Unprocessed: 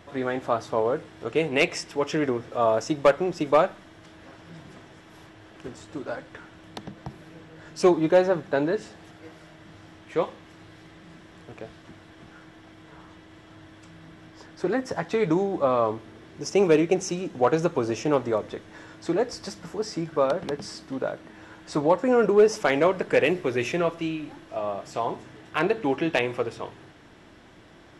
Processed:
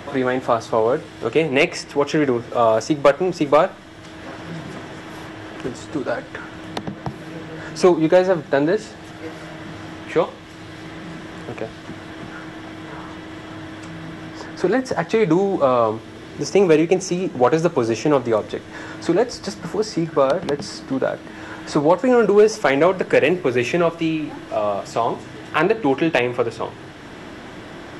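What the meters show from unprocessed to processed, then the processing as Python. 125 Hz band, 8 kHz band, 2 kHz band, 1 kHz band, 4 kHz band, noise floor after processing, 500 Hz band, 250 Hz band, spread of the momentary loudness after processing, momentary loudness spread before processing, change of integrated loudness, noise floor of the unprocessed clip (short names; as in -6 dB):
+7.0 dB, +5.0 dB, +6.0 dB, +6.0 dB, +6.0 dB, -38 dBFS, +5.5 dB, +6.5 dB, 18 LU, 18 LU, +5.5 dB, -50 dBFS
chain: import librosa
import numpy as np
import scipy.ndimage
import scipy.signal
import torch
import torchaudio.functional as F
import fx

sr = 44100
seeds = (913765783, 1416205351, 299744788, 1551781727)

y = fx.band_squash(x, sr, depth_pct=40)
y = y * librosa.db_to_amplitude(6.5)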